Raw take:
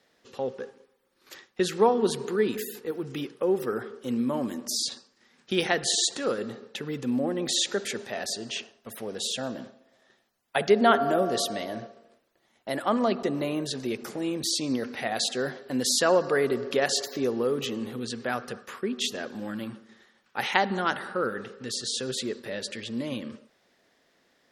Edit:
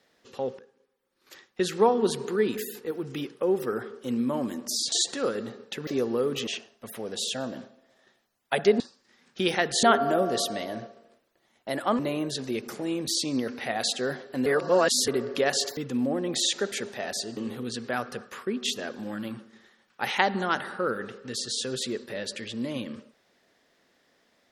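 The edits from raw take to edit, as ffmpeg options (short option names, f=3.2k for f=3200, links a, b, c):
-filter_complex "[0:a]asplit=12[a][b][c][d][e][f][g][h][i][j][k][l];[a]atrim=end=0.59,asetpts=PTS-STARTPTS,afade=t=out:st=0.586:d=0.004:c=hsin:silence=0.11885[m];[b]atrim=start=0.59:end=4.922,asetpts=PTS-STARTPTS,afade=t=in:d=1.17:silence=0.11885[n];[c]atrim=start=5.948:end=6.902[o];[d]atrim=start=17.128:end=17.732[p];[e]atrim=start=8.498:end=10.832[q];[f]atrim=start=4.918:end=5.952[r];[g]atrim=start=10.828:end=12.992[s];[h]atrim=start=13.348:end=15.822[t];[i]atrim=start=15.818:end=16.442,asetpts=PTS-STARTPTS,areverse[u];[j]atrim=start=16.438:end=17.132[v];[k]atrim=start=6.898:end=8.502[w];[l]atrim=start=17.728[x];[m][n]concat=n=2:v=0:a=1[y];[y][o]acrossfade=d=0.004:c1=hsin:c2=hsin[z];[z][p]acrossfade=d=0.004:c1=hsin:c2=hsin[aa];[aa][q]acrossfade=d=0.004:c1=hsin:c2=hsin[ab];[ab][r]acrossfade=d=0.004:c1=hsin:c2=hsin[ac];[ac][s]acrossfade=d=0.004:c1=hsin:c2=hsin[ad];[ad][t]acrossfade=d=0.004:c1=hsin:c2=hsin[ae];[ae][u]acrossfade=d=0.004:c1=hsin:c2=hsin[af];[af][v]acrossfade=d=0.004:c1=hsin:c2=hsin[ag];[ag][w]acrossfade=d=0.004:c1=hsin:c2=hsin[ah];[ah][x]acrossfade=d=0.004:c1=hsin:c2=hsin"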